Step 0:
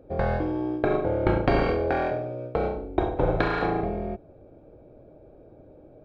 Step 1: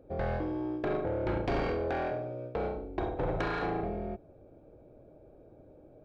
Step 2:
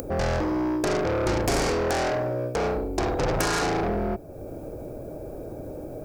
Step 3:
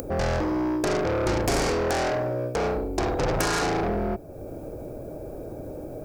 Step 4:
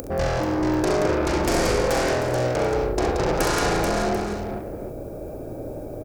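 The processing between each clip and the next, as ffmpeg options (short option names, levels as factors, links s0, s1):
-af "asoftclip=type=tanh:threshold=0.1,volume=0.562"
-af "acompressor=mode=upward:threshold=0.00891:ratio=2.5,aeval=exprs='0.0562*(cos(1*acos(clip(val(0)/0.0562,-1,1)))-cos(1*PI/2))+0.0126*(cos(5*acos(clip(val(0)/0.0562,-1,1)))-cos(5*PI/2))':c=same,aexciter=amount=4.5:drive=5.5:freq=4900,volume=2.11"
-af anull
-af "aecho=1:1:41|67|178|435|740:0.316|0.473|0.562|0.596|0.224"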